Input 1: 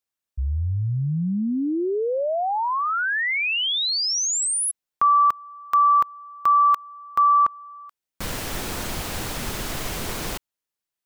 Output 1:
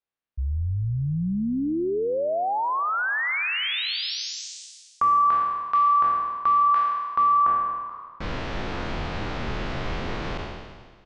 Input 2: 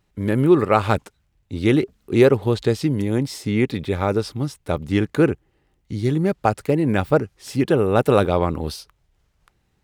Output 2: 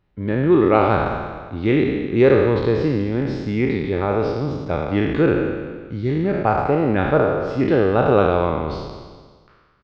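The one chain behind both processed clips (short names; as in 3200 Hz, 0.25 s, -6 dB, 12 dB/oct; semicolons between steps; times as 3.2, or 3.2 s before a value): spectral trails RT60 1.53 s; Gaussian blur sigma 2.3 samples; on a send: frequency-shifting echo 0.114 s, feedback 57%, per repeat -39 Hz, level -17 dB; on the sum: gain -2 dB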